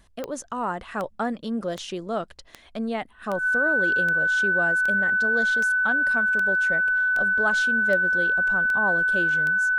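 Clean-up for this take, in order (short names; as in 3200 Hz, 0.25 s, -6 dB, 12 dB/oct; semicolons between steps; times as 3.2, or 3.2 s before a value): de-click; notch 1500 Hz, Q 30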